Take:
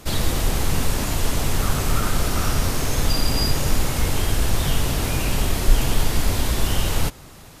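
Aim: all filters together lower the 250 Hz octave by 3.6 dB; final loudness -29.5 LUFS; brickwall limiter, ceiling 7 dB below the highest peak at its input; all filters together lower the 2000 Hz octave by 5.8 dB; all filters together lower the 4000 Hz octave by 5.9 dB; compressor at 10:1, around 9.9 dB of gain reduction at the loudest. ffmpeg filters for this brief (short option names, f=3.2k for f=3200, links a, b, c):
-af "equalizer=f=250:t=o:g=-5,equalizer=f=2k:t=o:g=-6,equalizer=f=4k:t=o:g=-6,acompressor=threshold=-17dB:ratio=10,volume=0.5dB,alimiter=limit=-16.5dB:level=0:latency=1"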